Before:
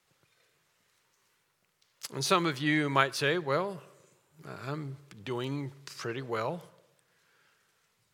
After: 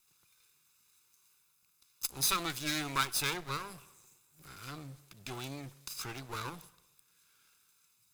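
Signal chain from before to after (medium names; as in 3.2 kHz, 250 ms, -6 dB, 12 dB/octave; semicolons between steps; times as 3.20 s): comb filter that takes the minimum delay 0.8 ms; pre-emphasis filter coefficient 0.8; trim +7 dB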